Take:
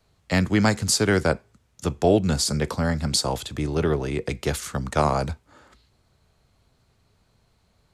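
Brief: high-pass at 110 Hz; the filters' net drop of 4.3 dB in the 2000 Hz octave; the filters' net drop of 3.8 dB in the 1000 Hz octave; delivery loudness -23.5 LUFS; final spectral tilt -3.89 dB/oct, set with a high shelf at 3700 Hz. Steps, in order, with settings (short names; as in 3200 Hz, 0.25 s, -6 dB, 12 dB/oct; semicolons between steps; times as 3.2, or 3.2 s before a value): HPF 110 Hz; bell 1000 Hz -4.5 dB; bell 2000 Hz -5 dB; high shelf 3700 Hz +4.5 dB; gain +0.5 dB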